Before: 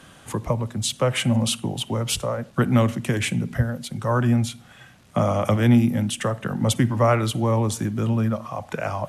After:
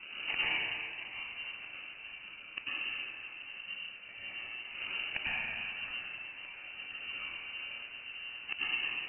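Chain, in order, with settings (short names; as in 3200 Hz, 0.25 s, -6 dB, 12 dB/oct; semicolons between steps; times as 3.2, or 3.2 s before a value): decimation with a swept rate 37×, swing 60% 1.9 Hz; flipped gate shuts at -25 dBFS, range -33 dB; plate-style reverb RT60 2.1 s, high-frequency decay 1×, pre-delay 85 ms, DRR -9.5 dB; inverted band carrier 2900 Hz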